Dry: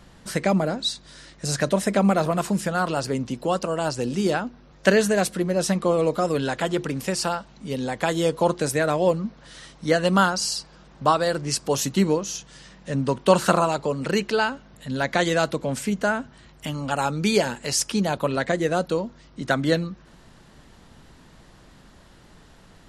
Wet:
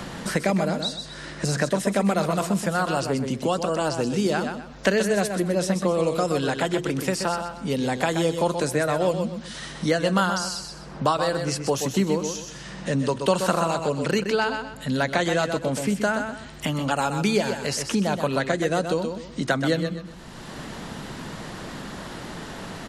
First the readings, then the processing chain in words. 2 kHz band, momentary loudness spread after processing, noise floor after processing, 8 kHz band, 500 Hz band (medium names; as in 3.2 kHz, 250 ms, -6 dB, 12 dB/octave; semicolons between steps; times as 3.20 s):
-0.5 dB, 13 LU, -40 dBFS, -2.0 dB, -1.0 dB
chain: on a send: feedback delay 126 ms, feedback 23%, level -8 dB; on the sum: three bands compressed up and down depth 70%; trim -1.5 dB